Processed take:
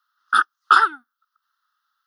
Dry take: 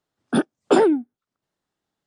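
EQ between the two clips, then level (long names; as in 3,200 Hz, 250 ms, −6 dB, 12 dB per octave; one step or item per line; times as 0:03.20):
high-pass with resonance 1,300 Hz, resonance Q 8.2
high-shelf EQ 4,200 Hz +9 dB
phaser with its sweep stopped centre 2,300 Hz, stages 6
+2.5 dB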